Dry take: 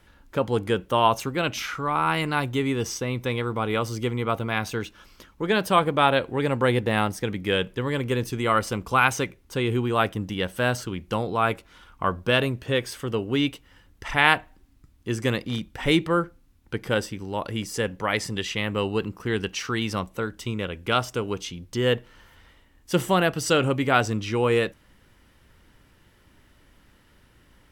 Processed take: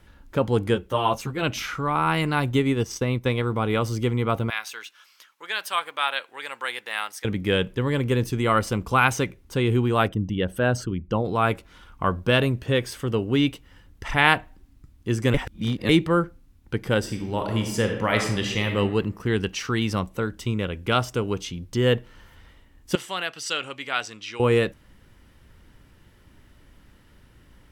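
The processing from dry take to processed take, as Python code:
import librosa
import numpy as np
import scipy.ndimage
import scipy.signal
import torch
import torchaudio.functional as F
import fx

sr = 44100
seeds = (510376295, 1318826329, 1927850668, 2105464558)

y = fx.ensemble(x, sr, at=(0.74, 1.41), fade=0.02)
y = fx.transient(y, sr, attack_db=3, sustain_db=-8, at=(2.47, 3.43))
y = fx.highpass(y, sr, hz=1400.0, slope=12, at=(4.5, 7.25))
y = fx.envelope_sharpen(y, sr, power=1.5, at=(10.07, 11.24), fade=0.02)
y = fx.reverb_throw(y, sr, start_s=16.99, length_s=1.77, rt60_s=0.93, drr_db=3.0)
y = fx.bandpass_q(y, sr, hz=3600.0, q=0.73, at=(22.95, 24.4))
y = fx.edit(y, sr, fx.reverse_span(start_s=15.34, length_s=0.55), tone=tone)
y = fx.low_shelf(y, sr, hz=280.0, db=5.5)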